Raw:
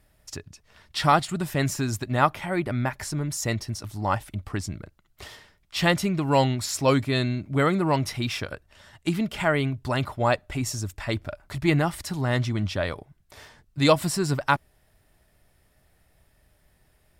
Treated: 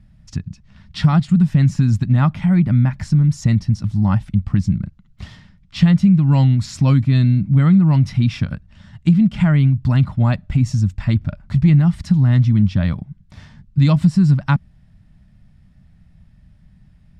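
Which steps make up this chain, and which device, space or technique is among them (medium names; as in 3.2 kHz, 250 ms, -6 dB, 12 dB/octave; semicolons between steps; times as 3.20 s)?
jukebox (low-pass 5.6 kHz 12 dB/octave; resonant low shelf 280 Hz +13.5 dB, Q 3; compression 3:1, threshold -11 dBFS, peak gain reduction 8 dB)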